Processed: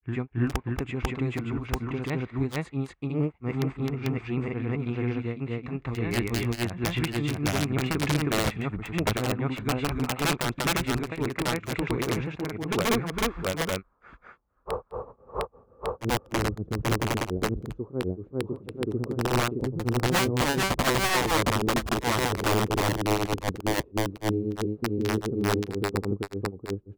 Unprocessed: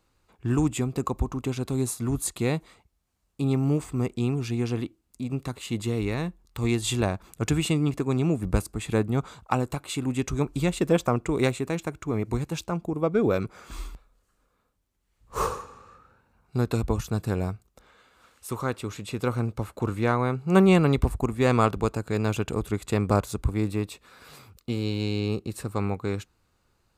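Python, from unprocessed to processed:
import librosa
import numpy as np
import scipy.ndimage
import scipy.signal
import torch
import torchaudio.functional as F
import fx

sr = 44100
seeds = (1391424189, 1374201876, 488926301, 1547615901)

y = fx.filter_sweep_lowpass(x, sr, from_hz=2100.0, to_hz=380.0, start_s=13.34, end_s=16.66, q=2.3)
y = (np.mod(10.0 ** (15.0 / 20.0) * y + 1.0, 2.0) - 1.0) / 10.0 ** (15.0 / 20.0)
y = fx.granulator(y, sr, seeds[0], grain_ms=186.0, per_s=20.0, spray_ms=730.0, spread_st=0)
y = y * librosa.db_to_amplitude(2.5)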